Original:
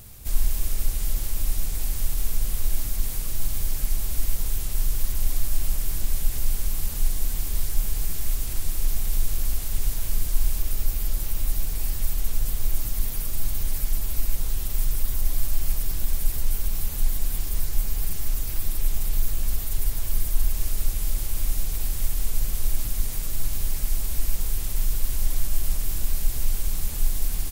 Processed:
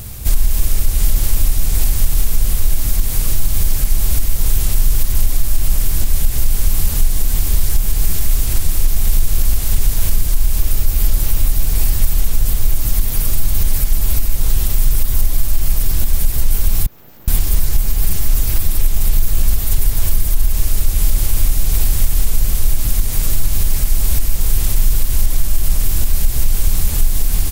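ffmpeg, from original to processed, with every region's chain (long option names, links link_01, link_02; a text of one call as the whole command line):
ffmpeg -i in.wav -filter_complex "[0:a]asettb=1/sr,asplit=3[link_01][link_02][link_03];[link_01]atrim=end=16.864[link_04];[link_02]atrim=start=16.86:end=17.28,asetpts=PTS-STARTPTS,afade=type=in:duration=0.004:curve=qsin,afade=type=out:start_time=0.416:duration=0.004:curve=qsin,bandpass=frequency=7200:width_type=q:width=19,aeval=exprs='abs(val(0))':channel_layout=same[link_05];[link_03]atrim=start=17.276[link_06];[link_04][link_05]acrossfade=duration=0.004:curve1=hsin:curve2=qsin[link_07];[link_07][link_06]acrossfade=duration=0.004:curve1=qsin:curve2=hsin,equalizer=frequency=81:width=0.58:gain=4,alimiter=limit=-15.5dB:level=0:latency=1:release=243,acontrast=68,volume=6.5dB" out.wav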